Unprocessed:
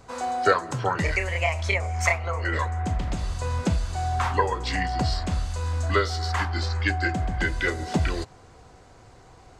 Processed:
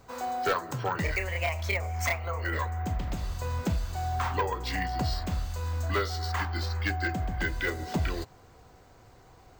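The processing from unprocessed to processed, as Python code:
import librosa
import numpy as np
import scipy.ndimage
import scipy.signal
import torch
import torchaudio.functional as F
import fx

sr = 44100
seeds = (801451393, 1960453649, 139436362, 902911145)

y = np.repeat(x[::2], 2)[:len(x)]
y = np.clip(y, -10.0 ** (-17.0 / 20.0), 10.0 ** (-17.0 / 20.0))
y = y * 10.0 ** (-4.5 / 20.0)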